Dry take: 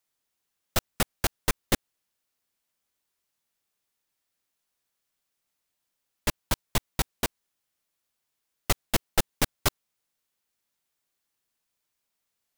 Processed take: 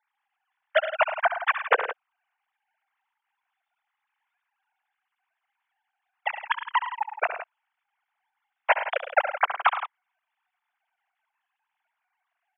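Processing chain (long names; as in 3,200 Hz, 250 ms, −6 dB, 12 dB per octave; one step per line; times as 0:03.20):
three sine waves on the formant tracks
three-way crossover with the lows and the highs turned down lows −17 dB, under 500 Hz, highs −22 dB, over 2,500 Hz
on a send: multi-tap delay 68/109/166 ms −10.5/−12/−13 dB
on the sum: level +4.5 dB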